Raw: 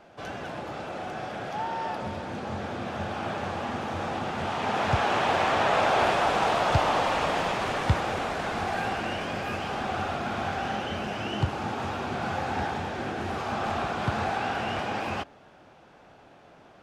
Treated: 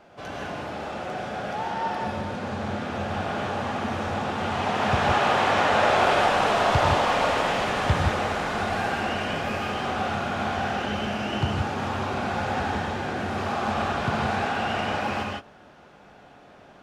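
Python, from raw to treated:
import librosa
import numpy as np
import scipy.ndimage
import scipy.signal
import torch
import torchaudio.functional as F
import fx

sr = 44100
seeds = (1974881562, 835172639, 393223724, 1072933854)

y = fx.rev_gated(x, sr, seeds[0], gate_ms=190, shape='rising', drr_db=-0.5)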